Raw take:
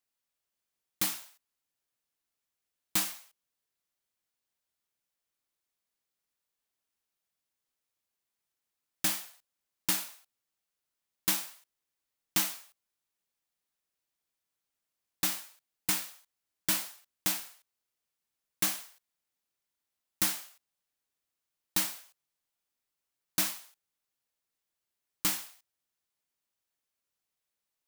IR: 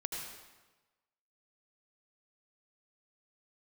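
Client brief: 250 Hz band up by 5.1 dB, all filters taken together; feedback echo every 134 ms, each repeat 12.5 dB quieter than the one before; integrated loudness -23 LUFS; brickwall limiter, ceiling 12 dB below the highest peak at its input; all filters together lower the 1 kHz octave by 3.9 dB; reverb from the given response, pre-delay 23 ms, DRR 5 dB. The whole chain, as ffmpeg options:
-filter_complex "[0:a]equalizer=f=250:t=o:g=8,equalizer=f=1000:t=o:g=-5.5,alimiter=level_in=1.06:limit=0.0631:level=0:latency=1,volume=0.944,aecho=1:1:134|268|402:0.237|0.0569|0.0137,asplit=2[s0][s1];[1:a]atrim=start_sample=2205,adelay=23[s2];[s1][s2]afir=irnorm=-1:irlink=0,volume=0.473[s3];[s0][s3]amix=inputs=2:normalize=0,volume=5.62"

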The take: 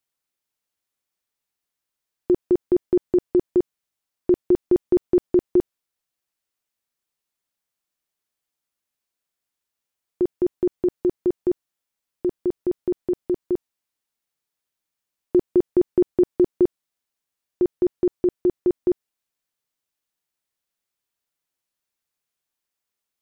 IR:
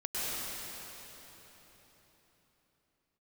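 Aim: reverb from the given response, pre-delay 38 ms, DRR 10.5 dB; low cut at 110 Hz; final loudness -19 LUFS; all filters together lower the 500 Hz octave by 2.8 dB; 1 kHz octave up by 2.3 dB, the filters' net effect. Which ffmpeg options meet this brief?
-filter_complex "[0:a]highpass=110,equalizer=f=500:t=o:g=-6,equalizer=f=1000:t=o:g=5.5,asplit=2[s0][s1];[1:a]atrim=start_sample=2205,adelay=38[s2];[s1][s2]afir=irnorm=-1:irlink=0,volume=0.133[s3];[s0][s3]amix=inputs=2:normalize=0,volume=2.24"

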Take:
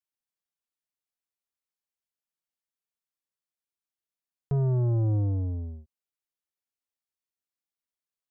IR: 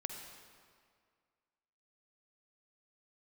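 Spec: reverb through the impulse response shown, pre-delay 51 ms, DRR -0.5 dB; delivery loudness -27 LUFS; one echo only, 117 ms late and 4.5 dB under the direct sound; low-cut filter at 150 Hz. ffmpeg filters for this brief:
-filter_complex "[0:a]highpass=150,aecho=1:1:117:0.596,asplit=2[s0][s1];[1:a]atrim=start_sample=2205,adelay=51[s2];[s1][s2]afir=irnorm=-1:irlink=0,volume=1.12[s3];[s0][s3]amix=inputs=2:normalize=0,volume=1.06"

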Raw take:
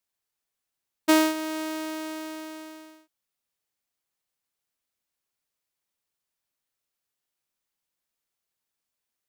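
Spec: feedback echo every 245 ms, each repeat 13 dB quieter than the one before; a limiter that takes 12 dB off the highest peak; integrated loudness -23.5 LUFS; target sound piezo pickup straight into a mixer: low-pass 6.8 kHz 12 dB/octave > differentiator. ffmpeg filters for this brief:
-af "alimiter=limit=0.0668:level=0:latency=1,lowpass=6800,aderivative,aecho=1:1:245|490|735:0.224|0.0493|0.0108,volume=14.1"

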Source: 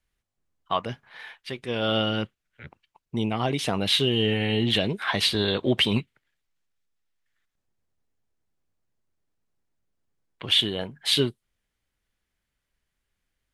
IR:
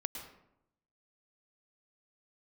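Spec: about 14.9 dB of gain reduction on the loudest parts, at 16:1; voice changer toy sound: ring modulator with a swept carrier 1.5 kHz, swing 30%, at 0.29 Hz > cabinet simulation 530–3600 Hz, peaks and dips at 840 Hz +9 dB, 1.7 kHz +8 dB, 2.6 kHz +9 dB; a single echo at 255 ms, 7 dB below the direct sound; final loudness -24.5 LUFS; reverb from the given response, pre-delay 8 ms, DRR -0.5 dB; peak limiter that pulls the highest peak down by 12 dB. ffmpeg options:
-filter_complex "[0:a]acompressor=threshold=0.0251:ratio=16,alimiter=level_in=2.11:limit=0.0631:level=0:latency=1,volume=0.473,aecho=1:1:255:0.447,asplit=2[s0][s1];[1:a]atrim=start_sample=2205,adelay=8[s2];[s1][s2]afir=irnorm=-1:irlink=0,volume=1.06[s3];[s0][s3]amix=inputs=2:normalize=0,aeval=exprs='val(0)*sin(2*PI*1500*n/s+1500*0.3/0.29*sin(2*PI*0.29*n/s))':c=same,highpass=530,equalizer=f=840:t=q:w=4:g=9,equalizer=f=1700:t=q:w=4:g=8,equalizer=f=2600:t=q:w=4:g=9,lowpass=f=3600:w=0.5412,lowpass=f=3600:w=1.3066,volume=3.16"

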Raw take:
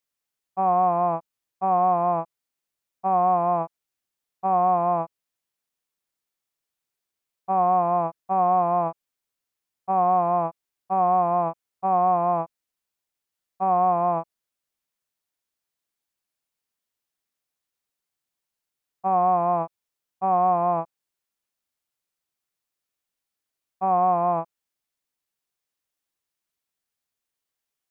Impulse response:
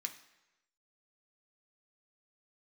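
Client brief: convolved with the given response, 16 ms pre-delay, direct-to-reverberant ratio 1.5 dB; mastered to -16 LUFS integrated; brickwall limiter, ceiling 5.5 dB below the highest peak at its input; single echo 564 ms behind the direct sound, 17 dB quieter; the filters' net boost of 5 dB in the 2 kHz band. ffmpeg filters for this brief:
-filter_complex "[0:a]equalizer=f=2000:t=o:g=7,alimiter=limit=0.15:level=0:latency=1,aecho=1:1:564:0.141,asplit=2[s0][s1];[1:a]atrim=start_sample=2205,adelay=16[s2];[s1][s2]afir=irnorm=-1:irlink=0,volume=1.06[s3];[s0][s3]amix=inputs=2:normalize=0,volume=2.82"

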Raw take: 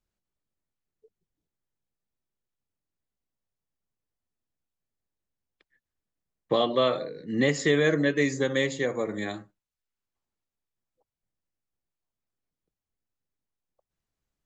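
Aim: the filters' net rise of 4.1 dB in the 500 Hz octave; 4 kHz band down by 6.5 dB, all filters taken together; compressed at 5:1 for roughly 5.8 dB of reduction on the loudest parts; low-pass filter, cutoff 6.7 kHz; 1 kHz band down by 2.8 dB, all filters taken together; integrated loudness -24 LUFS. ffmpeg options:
-af "lowpass=6700,equalizer=f=500:t=o:g=6,equalizer=f=1000:t=o:g=-6,equalizer=f=4000:t=o:g=-7.5,acompressor=threshold=0.0794:ratio=5,volume=1.58"

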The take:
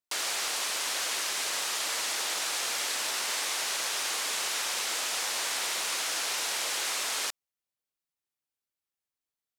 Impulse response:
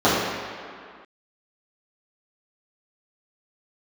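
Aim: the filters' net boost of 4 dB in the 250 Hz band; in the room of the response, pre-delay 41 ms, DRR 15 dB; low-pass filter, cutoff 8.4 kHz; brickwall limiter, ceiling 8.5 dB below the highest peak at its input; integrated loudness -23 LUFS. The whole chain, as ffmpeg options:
-filter_complex "[0:a]lowpass=8400,equalizer=f=250:t=o:g=5.5,alimiter=level_in=1.5:limit=0.0631:level=0:latency=1,volume=0.668,asplit=2[s0][s1];[1:a]atrim=start_sample=2205,adelay=41[s2];[s1][s2]afir=irnorm=-1:irlink=0,volume=0.0112[s3];[s0][s3]amix=inputs=2:normalize=0,volume=3.76"

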